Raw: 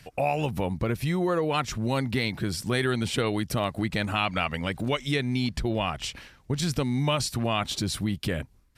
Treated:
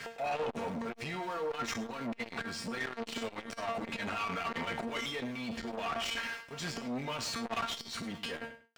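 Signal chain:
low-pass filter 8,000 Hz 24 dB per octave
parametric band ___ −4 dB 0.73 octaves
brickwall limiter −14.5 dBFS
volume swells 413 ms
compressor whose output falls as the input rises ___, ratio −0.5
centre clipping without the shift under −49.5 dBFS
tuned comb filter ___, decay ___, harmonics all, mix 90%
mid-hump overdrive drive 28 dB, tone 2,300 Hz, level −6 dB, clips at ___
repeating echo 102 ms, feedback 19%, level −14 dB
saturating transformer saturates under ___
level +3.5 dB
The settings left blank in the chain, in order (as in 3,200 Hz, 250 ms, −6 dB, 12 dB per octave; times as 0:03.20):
4,100 Hz, −32 dBFS, 230 Hz, 0.25 s, −27 dBFS, 660 Hz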